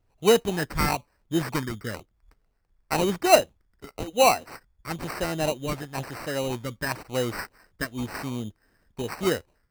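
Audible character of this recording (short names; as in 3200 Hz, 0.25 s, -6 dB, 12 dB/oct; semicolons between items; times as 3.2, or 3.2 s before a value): phasing stages 8, 1 Hz, lowest notch 700–3600 Hz; aliases and images of a low sample rate 3400 Hz, jitter 0%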